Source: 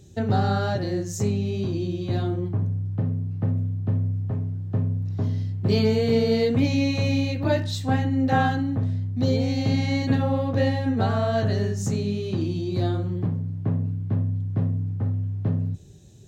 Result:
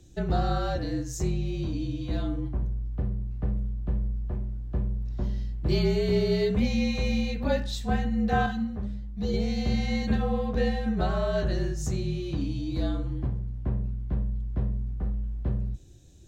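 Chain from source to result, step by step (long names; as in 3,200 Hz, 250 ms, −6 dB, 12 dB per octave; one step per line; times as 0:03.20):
frequency shifter −46 Hz
0:08.46–0:09.34: string-ensemble chorus
level −3.5 dB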